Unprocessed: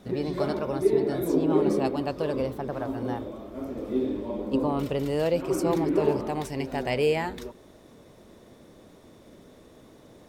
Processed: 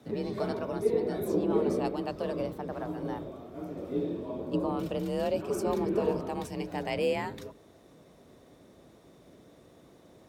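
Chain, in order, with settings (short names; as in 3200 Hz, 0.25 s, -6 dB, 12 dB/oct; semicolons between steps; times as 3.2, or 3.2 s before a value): octaver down 1 oct, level -6 dB; 4.08–6.64 notch 2000 Hz, Q 12; frequency shift +40 Hz; gain -5 dB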